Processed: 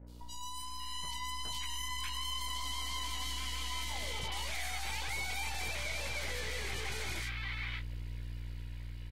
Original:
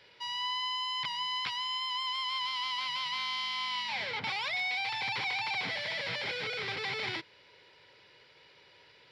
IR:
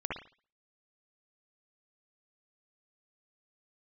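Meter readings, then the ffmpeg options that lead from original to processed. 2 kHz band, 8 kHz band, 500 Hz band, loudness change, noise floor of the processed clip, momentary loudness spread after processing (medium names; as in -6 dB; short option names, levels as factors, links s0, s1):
-5.5 dB, +11.5 dB, -4.0 dB, -5.5 dB, -43 dBFS, 8 LU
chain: -filter_complex "[0:a]aeval=exprs='val(0)+0.00316*(sin(2*PI*60*n/s)+sin(2*PI*2*60*n/s)/2+sin(2*PI*3*60*n/s)/3+sin(2*PI*4*60*n/s)/4+sin(2*PI*5*60*n/s)/5)':c=same,asubboost=boost=9:cutoff=58,aresample=11025,aresample=44100,asplit=2[s0][s1];[s1]adelay=20,volume=0.376[s2];[s0][s2]amix=inputs=2:normalize=0,aeval=exprs='0.0891*(cos(1*acos(clip(val(0)/0.0891,-1,1)))-cos(1*PI/2))+0.002*(cos(4*acos(clip(val(0)/0.0891,-1,1)))-cos(4*PI/2))+0.00794*(cos(5*acos(clip(val(0)/0.0891,-1,1)))-cos(5*PI/2))+0.02*(cos(8*acos(clip(val(0)/0.0891,-1,1)))-cos(8*PI/2))':c=same,asplit=2[s3][s4];[s4]acrusher=bits=7:mix=0:aa=0.000001,volume=0.631[s5];[s3][s5]amix=inputs=2:normalize=0,dynaudnorm=f=280:g=7:m=1.58,acrossover=split=1100|3600[s6][s7][s8];[s8]adelay=80[s9];[s7]adelay=590[s10];[s6][s10][s9]amix=inputs=3:normalize=0,acompressor=threshold=0.01:ratio=1.5,volume=0.422" -ar 48000 -c:a libvorbis -b:a 48k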